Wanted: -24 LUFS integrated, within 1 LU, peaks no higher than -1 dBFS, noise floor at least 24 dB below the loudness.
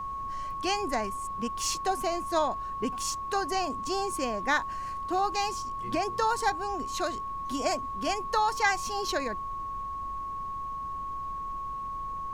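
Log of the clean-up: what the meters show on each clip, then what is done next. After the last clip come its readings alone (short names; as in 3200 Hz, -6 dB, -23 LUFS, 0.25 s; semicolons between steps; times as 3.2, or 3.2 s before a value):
steady tone 1100 Hz; tone level -33 dBFS; noise floor -36 dBFS; noise floor target -55 dBFS; loudness -31.0 LUFS; peak -11.0 dBFS; loudness target -24.0 LUFS
-> notch 1100 Hz, Q 30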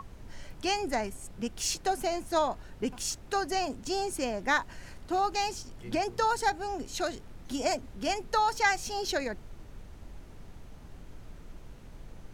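steady tone none; noise floor -49 dBFS; noise floor target -55 dBFS
-> noise print and reduce 6 dB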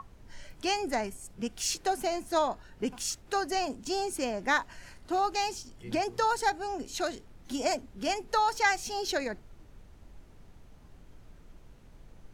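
noise floor -55 dBFS; loudness -31.0 LUFS; peak -11.5 dBFS; loudness target -24.0 LUFS
-> gain +7 dB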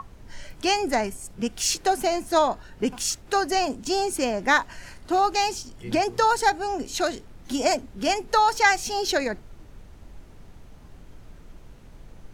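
loudness -24.0 LUFS; peak -4.5 dBFS; noise floor -48 dBFS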